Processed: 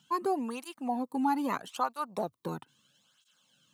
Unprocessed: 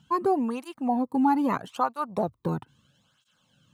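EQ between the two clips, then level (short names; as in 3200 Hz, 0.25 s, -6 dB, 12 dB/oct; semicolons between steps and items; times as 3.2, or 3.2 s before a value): HPF 190 Hz 12 dB/oct; high shelf 2300 Hz +10.5 dB; -6.5 dB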